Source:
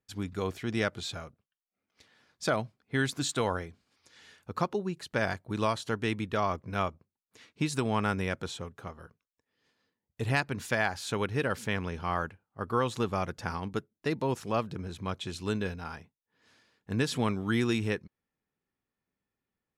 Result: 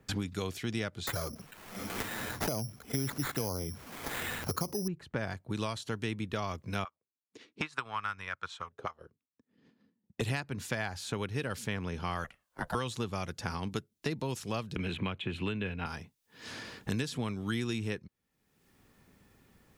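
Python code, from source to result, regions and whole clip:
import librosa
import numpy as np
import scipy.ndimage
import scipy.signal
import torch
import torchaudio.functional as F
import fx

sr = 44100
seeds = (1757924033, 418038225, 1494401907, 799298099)

y = fx.chain(x, sr, fx.env_flanger(rest_ms=10.5, full_db=-29.5),
    fx.resample_bad(factor=8, down='none', up='zero_stuff'),
    fx.env_flatten(amount_pct=50), at=(1.07, 4.88))
y = fx.chain(y, sr, fx.transient(attack_db=10, sustain_db=-7),
    fx.tilt_shelf(db=-8.0, hz=1400.0),
    fx.auto_wah(base_hz=210.0, top_hz=1200.0, q=2.8, full_db=-33.5, direction='up'), at=(6.84, 10.21))
y = fx.chain(y, sr, fx.highpass(hz=270.0, slope=24),
    fx.ring_mod(carrier_hz=270.0), at=(12.24, 12.75))
y = fx.chain(y, sr, fx.high_shelf_res(hz=3900.0, db=-12.5, q=3.0),
    fx.band_squash(depth_pct=100), at=(14.76, 15.86))
y = fx.low_shelf(y, sr, hz=250.0, db=6.0)
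y = fx.band_squash(y, sr, depth_pct=100)
y = y * librosa.db_to_amplitude(-7.5)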